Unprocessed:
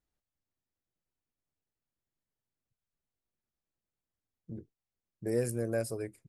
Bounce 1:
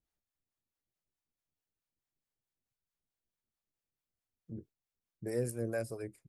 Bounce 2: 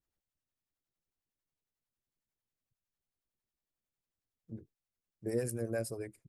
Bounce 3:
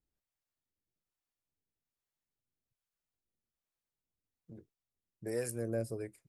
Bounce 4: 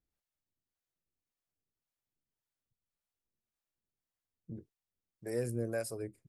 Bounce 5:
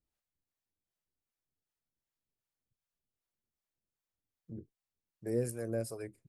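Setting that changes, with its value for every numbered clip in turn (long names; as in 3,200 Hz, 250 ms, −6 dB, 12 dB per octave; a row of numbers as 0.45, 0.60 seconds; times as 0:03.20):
two-band tremolo in antiphase, speed: 4.6, 11, 1.2, 1.8, 2.6 Hertz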